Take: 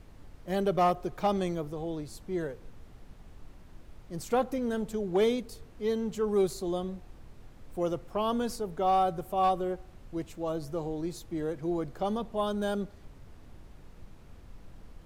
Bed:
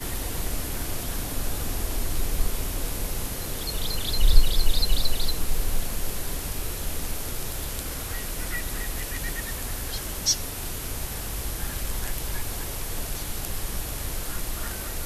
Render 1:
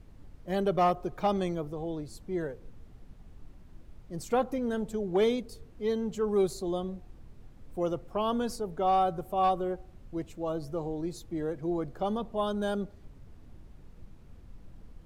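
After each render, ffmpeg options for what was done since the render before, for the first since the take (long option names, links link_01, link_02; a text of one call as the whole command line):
ffmpeg -i in.wav -af "afftdn=noise_reduction=6:noise_floor=-52" out.wav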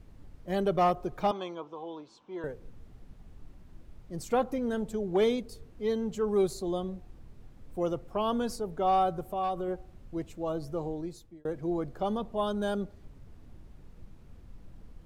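ffmpeg -i in.wav -filter_complex "[0:a]asettb=1/sr,asplit=3[link_01][link_02][link_03];[link_01]atrim=end=1.314[link_04];[link_02]atrim=start=1.31:end=2.44,asetpts=PTS-STARTPTS,afade=type=in:duration=0.004:curve=qsin,afade=type=out:start_time=1.126:duration=0.004:curve=qsin,highpass=420,equalizer=frequency=420:width_type=q:width=4:gain=-4,equalizer=frequency=640:width_type=q:width=4:gain=-6,equalizer=frequency=990:width_type=q:width=4:gain=10,equalizer=frequency=1900:width_type=q:width=4:gain=-9,equalizer=frequency=3100:width_type=q:width=4:gain=4,equalizer=frequency=4600:width_type=q:width=4:gain=-8,lowpass=frequency=5300:width=0.5412,lowpass=frequency=5300:width=1.3066[link_05];[link_03]atrim=start=2.436[link_06];[link_04][link_05]acrossfade=duration=0.004:curve1=hsin:curve2=qsin[link_07];[link_07][link_06]acrossfade=duration=0.004:curve1=qsin:curve2=hsin,asettb=1/sr,asplit=3[link_08][link_09][link_10];[link_08]atrim=end=9.274[link_11];[link_09]atrim=start=9.27:end=9.68,asetpts=PTS-STARTPTS,afade=type=in:duration=0.004:curve=qsin,afade=type=out:start_time=0.406:duration=0.004:curve=qsin,acompressor=threshold=-31dB:ratio=2:attack=3.2:release=140:knee=1:detection=peak[link_12];[link_10]atrim=start=9.676[link_13];[link_11][link_12]acrossfade=duration=0.004:curve1=hsin:curve2=qsin[link_14];[link_14][link_13]acrossfade=duration=0.004:curve1=qsin:curve2=hsin,asplit=2[link_15][link_16];[link_15]atrim=end=11.45,asetpts=PTS-STARTPTS,afade=type=out:start_time=10.88:duration=0.57[link_17];[link_16]atrim=start=11.45,asetpts=PTS-STARTPTS,afade=type=in:duration=0.004:curve=hsin[link_18];[link_17][link_18]concat=n=2:v=0:a=1" out.wav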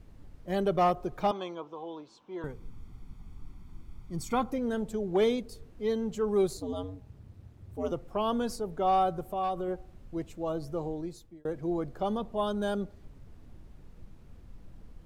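ffmpeg -i in.wav -filter_complex "[0:a]asettb=1/sr,asplit=3[link_01][link_02][link_03];[link_01]atrim=end=2.424[link_04];[link_02]atrim=start=2.42:end=4.5,asetpts=PTS-STARTPTS,afade=type=in:duration=0.004:curve=qsin,afade=type=out:start_time=2.076:duration=0.004:curve=qsin,aecho=1:1:0.9:0.65,atrim=end_sample=91728[link_05];[link_03]atrim=start=4.496[link_06];[link_04][link_05]acrossfade=duration=0.004:curve1=hsin:curve2=qsin[link_07];[link_07][link_06]acrossfade=duration=0.004:curve1=qsin:curve2=hsin,asettb=1/sr,asplit=3[link_08][link_09][link_10];[link_08]atrim=end=6.574[link_11];[link_09]atrim=start=6.57:end=7.92,asetpts=PTS-STARTPTS,afade=type=in:duration=0.004:curve=qsin,afade=type=out:start_time=1.346:duration=0.004:curve=qsin,aeval=exprs='val(0)*sin(2*PI*94*n/s)':channel_layout=same[link_12];[link_10]atrim=start=7.916[link_13];[link_11][link_12]acrossfade=duration=0.004:curve1=hsin:curve2=qsin[link_14];[link_14][link_13]acrossfade=duration=0.004:curve1=qsin:curve2=hsin" out.wav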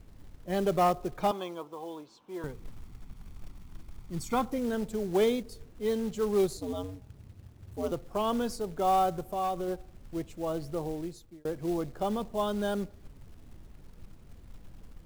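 ffmpeg -i in.wav -af "acrusher=bits=5:mode=log:mix=0:aa=0.000001" out.wav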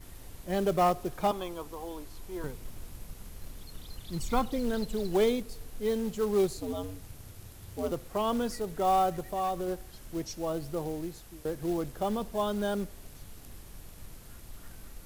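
ffmpeg -i in.wav -i bed.wav -filter_complex "[1:a]volume=-20dB[link_01];[0:a][link_01]amix=inputs=2:normalize=0" out.wav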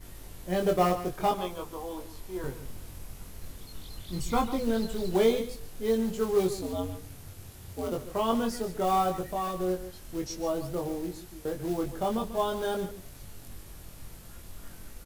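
ffmpeg -i in.wav -filter_complex "[0:a]asplit=2[link_01][link_02];[link_02]adelay=22,volume=-3dB[link_03];[link_01][link_03]amix=inputs=2:normalize=0,aecho=1:1:144:0.237" out.wav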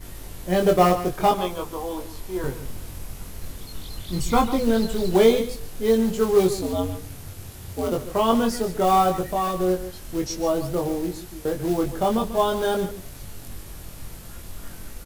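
ffmpeg -i in.wav -af "volume=7.5dB" out.wav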